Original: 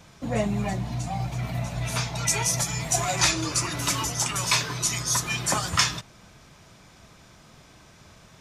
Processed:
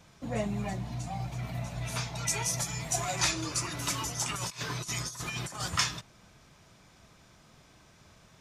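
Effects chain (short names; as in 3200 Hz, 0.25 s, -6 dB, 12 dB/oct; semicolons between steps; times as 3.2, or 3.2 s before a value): 4.25–5.68 negative-ratio compressor -29 dBFS, ratio -0.5; gain -6.5 dB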